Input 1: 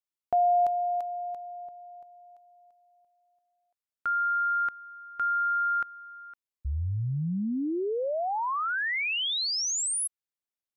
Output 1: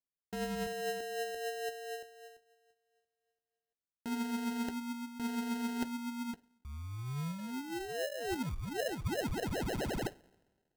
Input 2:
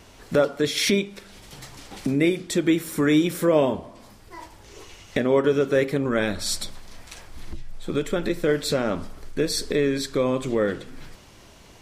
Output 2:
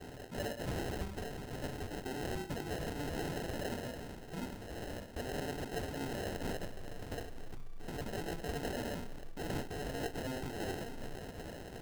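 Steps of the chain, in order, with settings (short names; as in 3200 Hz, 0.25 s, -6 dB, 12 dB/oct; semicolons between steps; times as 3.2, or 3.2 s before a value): in parallel at -6 dB: sine folder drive 18 dB, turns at -7.5 dBFS; on the sum: small resonant body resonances 1600/2400 Hz, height 13 dB; expander -30 dBFS, range -20 dB; reverse; compressor 6:1, threshold -24 dBFS; reverse; two-slope reverb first 0.42 s, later 1.6 s, from -16 dB, DRR 14.5 dB; flange 0.96 Hz, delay 6.2 ms, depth 2.8 ms, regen +53%; low shelf 490 Hz -6 dB; sample-and-hold 38×; gain -7.5 dB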